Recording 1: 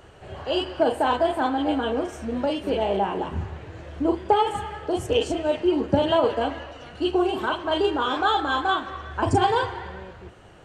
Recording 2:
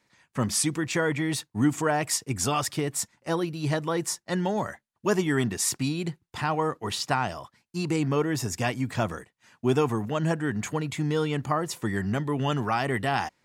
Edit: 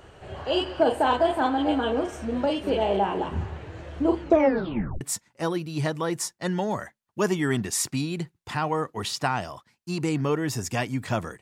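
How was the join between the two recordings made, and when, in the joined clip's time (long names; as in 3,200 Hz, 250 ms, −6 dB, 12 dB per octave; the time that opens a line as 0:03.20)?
recording 1
0:04.16: tape stop 0.85 s
0:05.01: continue with recording 2 from 0:02.88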